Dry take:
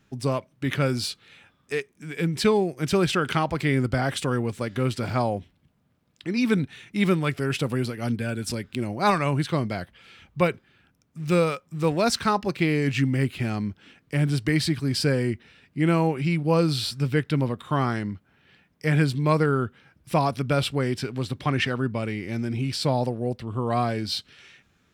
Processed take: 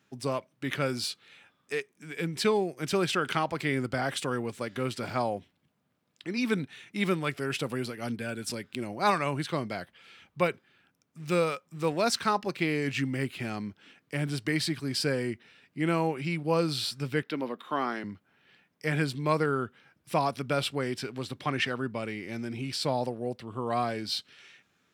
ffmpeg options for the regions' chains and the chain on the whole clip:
ffmpeg -i in.wav -filter_complex "[0:a]asettb=1/sr,asplit=3[link_01][link_02][link_03];[link_01]atrim=end=17.224[link_04];[link_02]atrim=start=17.22:end=18.04,asetpts=PTS-STARTPTS,afade=type=in:duration=0.004:curve=qsin,afade=type=out:start_time=0.816:duration=0.004:curve=qsin,highpass=frequency=210:width=0.5412,highpass=frequency=210:width=1.3066,equalizer=frequency=8300:width=1.5:gain=-10.5[link_05];[link_03]atrim=start=18.036[link_06];[link_04][link_05]acrossfade=duration=0.004:curve1=hsin:curve2=qsin[link_07];[link_07][link_06]acrossfade=duration=0.004:curve1=qsin:curve2=hsin,highpass=100,lowshelf=frequency=210:gain=-8.5,volume=-3dB" out.wav

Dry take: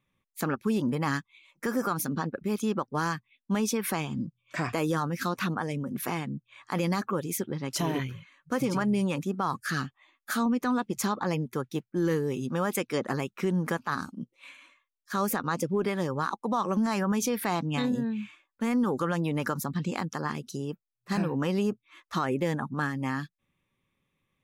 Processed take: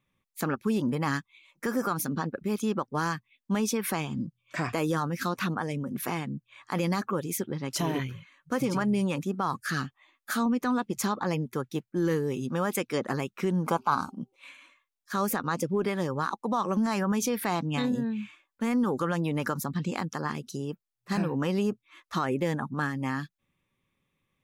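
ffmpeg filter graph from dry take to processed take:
ffmpeg -i in.wav -filter_complex "[0:a]asettb=1/sr,asplit=3[link_01][link_02][link_03];[link_01]atrim=end=13.664[link_04];[link_02]atrim=start=13.66:end=14.36,asetpts=PTS-STARTPTS,afade=type=in:duration=0.004:curve=qsin,afade=type=out:start_time=0.696:duration=0.004:curve=qsin,asuperstop=centerf=1800:order=4:qfactor=3,equalizer=frequency=890:width_type=o:width=1:gain=10,bandreject=frequency=390:width_type=h:width=4,bandreject=frequency=780:width_type=h:width=4[link_05];[link_03]atrim=start=14.356[link_06];[link_04][link_05]acrossfade=duration=0.004:curve1=hsin:curve2=qsin[link_07];[link_07][link_06]acrossfade=duration=0.004:curve1=qsin:curve2=hsin" out.wav

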